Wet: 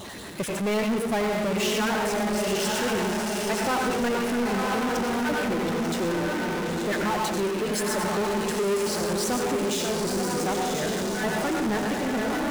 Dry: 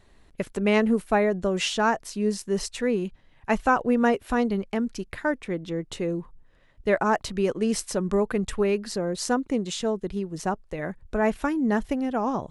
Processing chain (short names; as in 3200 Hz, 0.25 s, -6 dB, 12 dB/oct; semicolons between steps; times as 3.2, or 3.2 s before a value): random spectral dropouts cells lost 21%; HPF 150 Hz 12 dB/oct; high shelf 7900 Hz +5.5 dB; diffused feedback echo 1.004 s, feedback 41%, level -3 dB; on a send at -3.5 dB: reverb RT60 0.65 s, pre-delay 84 ms; on the sum: flange 0.72 Hz, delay 3.3 ms, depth 3.4 ms, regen -60%; power-law curve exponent 0.35; gain -6.5 dB